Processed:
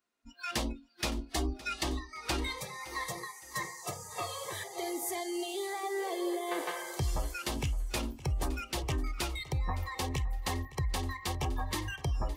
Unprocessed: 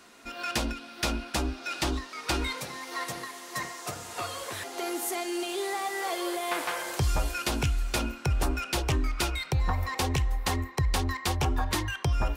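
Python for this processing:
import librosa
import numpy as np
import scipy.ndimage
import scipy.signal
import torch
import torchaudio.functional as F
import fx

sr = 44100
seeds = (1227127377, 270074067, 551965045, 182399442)

y = fx.noise_reduce_blind(x, sr, reduce_db=27)
y = fx.comb(y, sr, ms=2.8, depth=0.99, at=(1.17, 1.83))
y = fx.peak_eq(y, sr, hz=410.0, db=11.0, octaves=0.79, at=(5.83, 6.71))
y = fx.rider(y, sr, range_db=3, speed_s=0.5)
y = fx.echo_feedback(y, sr, ms=564, feedback_pct=30, wet_db=-18.0)
y = y * 10.0 ** (-5.0 / 20.0)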